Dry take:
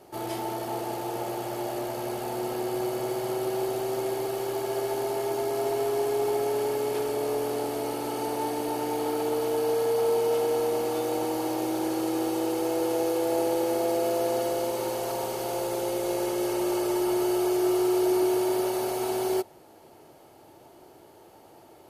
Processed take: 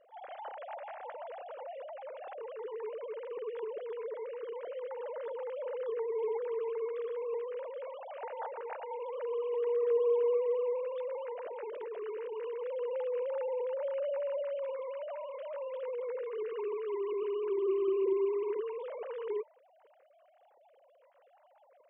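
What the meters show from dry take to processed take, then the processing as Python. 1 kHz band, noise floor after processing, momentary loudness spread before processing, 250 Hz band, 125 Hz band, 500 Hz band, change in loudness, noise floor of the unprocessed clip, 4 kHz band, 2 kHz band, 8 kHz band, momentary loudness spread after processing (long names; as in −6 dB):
−13.0 dB, −65 dBFS, 7 LU, below −15 dB, below −40 dB, −6.5 dB, −8.0 dB, −53 dBFS, below −20 dB, −12.0 dB, below −40 dB, 14 LU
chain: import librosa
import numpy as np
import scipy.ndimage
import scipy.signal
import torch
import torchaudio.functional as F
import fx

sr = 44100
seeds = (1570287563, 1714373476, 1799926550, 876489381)

y = fx.sine_speech(x, sr)
y = y * librosa.db_to_amplitude(-8.0)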